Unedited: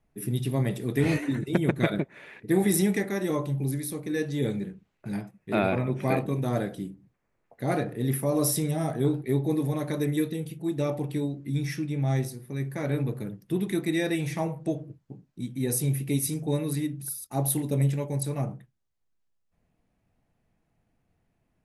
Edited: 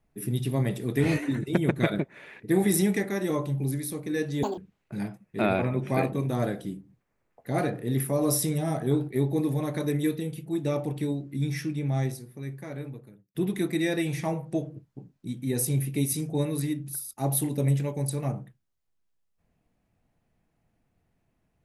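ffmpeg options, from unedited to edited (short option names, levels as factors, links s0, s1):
-filter_complex "[0:a]asplit=4[s0][s1][s2][s3];[s0]atrim=end=4.434[s4];[s1]atrim=start=4.43:end=4.71,asetpts=PTS-STARTPTS,asetrate=84231,aresample=44100[s5];[s2]atrim=start=4.706:end=13.48,asetpts=PTS-STARTPTS,afade=t=out:st=7.194:d=1.58[s6];[s3]atrim=start=13.48,asetpts=PTS-STARTPTS,afade=t=in:d=0.004:c=hsin[s7];[s4][s5]acrossfade=d=0.004:c1=hsin:c2=hsin[s8];[s6][s7]concat=n=2:v=0:a=1[s9];[s8][s9]acrossfade=d=0.004:c1=hsin:c2=hsin"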